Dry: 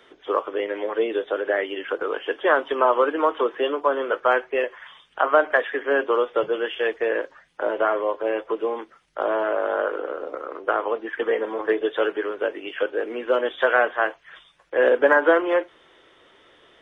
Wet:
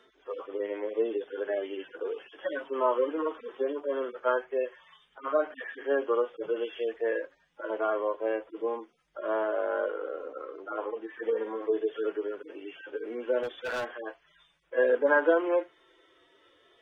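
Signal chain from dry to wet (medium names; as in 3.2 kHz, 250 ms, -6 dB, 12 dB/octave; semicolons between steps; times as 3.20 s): harmonic-percussive separation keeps harmonic; 13.43–14.02 s: overload inside the chain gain 24 dB; trim -5 dB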